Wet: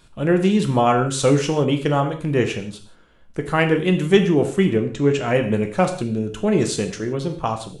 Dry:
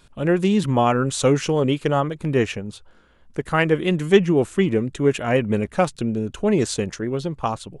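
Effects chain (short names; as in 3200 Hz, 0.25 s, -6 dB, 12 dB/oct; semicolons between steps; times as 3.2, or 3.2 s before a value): 4.76–5.23 steep low-pass 7600 Hz 36 dB/oct; non-linear reverb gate 0.2 s falling, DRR 5 dB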